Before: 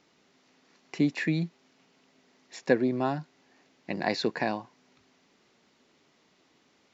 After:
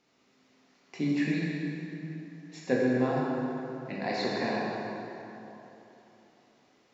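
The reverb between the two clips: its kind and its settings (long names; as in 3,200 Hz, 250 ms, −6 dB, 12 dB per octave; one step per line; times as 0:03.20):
dense smooth reverb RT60 3.4 s, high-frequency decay 0.6×, DRR −6 dB
level −7.5 dB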